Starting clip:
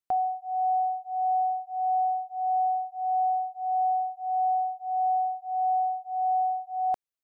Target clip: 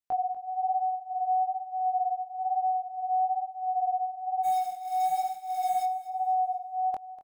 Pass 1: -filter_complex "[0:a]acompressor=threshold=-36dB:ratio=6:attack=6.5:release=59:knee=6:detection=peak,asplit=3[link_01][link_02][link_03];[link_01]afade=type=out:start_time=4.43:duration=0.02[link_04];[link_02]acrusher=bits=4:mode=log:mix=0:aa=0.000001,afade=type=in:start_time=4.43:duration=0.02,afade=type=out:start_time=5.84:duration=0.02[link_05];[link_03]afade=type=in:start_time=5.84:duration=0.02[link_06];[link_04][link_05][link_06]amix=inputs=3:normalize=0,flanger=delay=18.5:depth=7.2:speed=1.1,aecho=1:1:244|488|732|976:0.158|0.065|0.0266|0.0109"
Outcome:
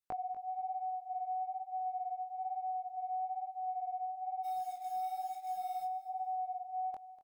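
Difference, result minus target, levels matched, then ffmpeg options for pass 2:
downward compressor: peak gain reduction +11.5 dB
-filter_complex "[0:a]asplit=3[link_01][link_02][link_03];[link_01]afade=type=out:start_time=4.43:duration=0.02[link_04];[link_02]acrusher=bits=4:mode=log:mix=0:aa=0.000001,afade=type=in:start_time=4.43:duration=0.02,afade=type=out:start_time=5.84:duration=0.02[link_05];[link_03]afade=type=in:start_time=5.84:duration=0.02[link_06];[link_04][link_05][link_06]amix=inputs=3:normalize=0,flanger=delay=18.5:depth=7.2:speed=1.1,aecho=1:1:244|488|732|976:0.158|0.065|0.0266|0.0109"

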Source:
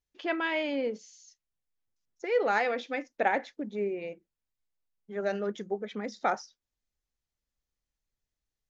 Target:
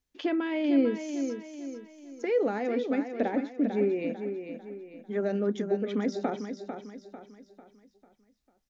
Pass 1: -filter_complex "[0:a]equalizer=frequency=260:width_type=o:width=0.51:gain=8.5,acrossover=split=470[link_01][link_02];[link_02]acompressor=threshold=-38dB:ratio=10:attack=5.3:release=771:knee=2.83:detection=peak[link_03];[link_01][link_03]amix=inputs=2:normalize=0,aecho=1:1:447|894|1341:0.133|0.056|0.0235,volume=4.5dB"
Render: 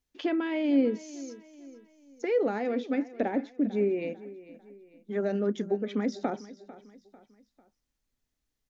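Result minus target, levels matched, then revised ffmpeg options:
echo-to-direct −9.5 dB
-filter_complex "[0:a]equalizer=frequency=260:width_type=o:width=0.51:gain=8.5,acrossover=split=470[link_01][link_02];[link_02]acompressor=threshold=-38dB:ratio=10:attack=5.3:release=771:knee=2.83:detection=peak[link_03];[link_01][link_03]amix=inputs=2:normalize=0,aecho=1:1:447|894|1341|1788|2235:0.398|0.167|0.0702|0.0295|0.0124,volume=4.5dB"

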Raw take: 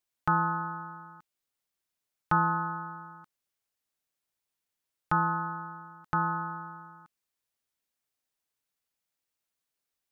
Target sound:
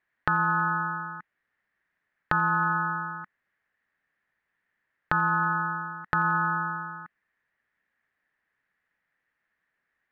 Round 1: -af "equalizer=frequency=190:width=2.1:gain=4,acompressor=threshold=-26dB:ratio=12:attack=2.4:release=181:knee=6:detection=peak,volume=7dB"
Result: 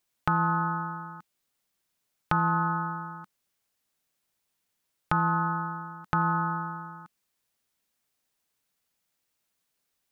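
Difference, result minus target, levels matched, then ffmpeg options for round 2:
2,000 Hz band −5.0 dB
-af "lowpass=frequency=1800:width_type=q:width=7.1,equalizer=frequency=190:width=2.1:gain=4,acompressor=threshold=-26dB:ratio=12:attack=2.4:release=181:knee=6:detection=peak,volume=7dB"

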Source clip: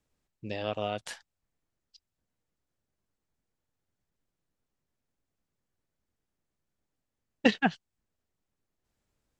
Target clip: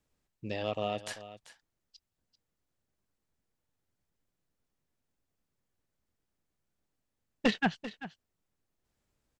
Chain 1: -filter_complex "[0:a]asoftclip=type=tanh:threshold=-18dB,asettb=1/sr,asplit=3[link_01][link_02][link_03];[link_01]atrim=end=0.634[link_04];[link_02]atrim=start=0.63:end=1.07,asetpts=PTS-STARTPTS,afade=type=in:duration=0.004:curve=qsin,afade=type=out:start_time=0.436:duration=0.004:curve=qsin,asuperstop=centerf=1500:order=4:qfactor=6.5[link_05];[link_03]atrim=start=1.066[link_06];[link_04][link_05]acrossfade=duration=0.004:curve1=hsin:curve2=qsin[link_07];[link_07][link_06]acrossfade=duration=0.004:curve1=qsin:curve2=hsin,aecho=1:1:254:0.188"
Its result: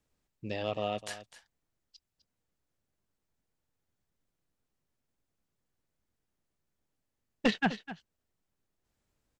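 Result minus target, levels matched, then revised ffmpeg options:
echo 136 ms early
-filter_complex "[0:a]asoftclip=type=tanh:threshold=-18dB,asettb=1/sr,asplit=3[link_01][link_02][link_03];[link_01]atrim=end=0.634[link_04];[link_02]atrim=start=0.63:end=1.07,asetpts=PTS-STARTPTS,afade=type=in:duration=0.004:curve=qsin,afade=type=out:start_time=0.436:duration=0.004:curve=qsin,asuperstop=centerf=1500:order=4:qfactor=6.5[link_05];[link_03]atrim=start=1.066[link_06];[link_04][link_05]acrossfade=duration=0.004:curve1=hsin:curve2=qsin[link_07];[link_07][link_06]acrossfade=duration=0.004:curve1=qsin:curve2=hsin,aecho=1:1:390:0.188"

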